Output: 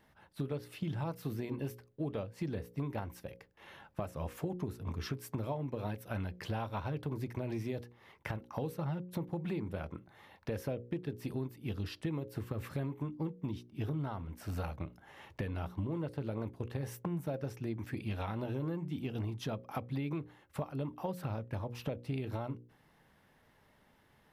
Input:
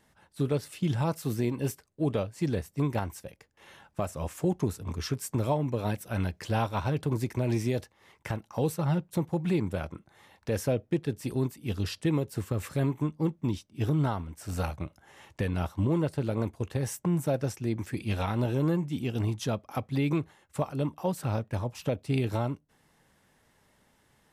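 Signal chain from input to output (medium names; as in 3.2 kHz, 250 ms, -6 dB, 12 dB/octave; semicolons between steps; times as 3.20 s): peaking EQ 7.8 kHz -12.5 dB 1.1 oct; hum notches 60/120/180/240/300/360/420/480/540 Hz; compression 4:1, threshold -35 dBFS, peak gain reduction 11 dB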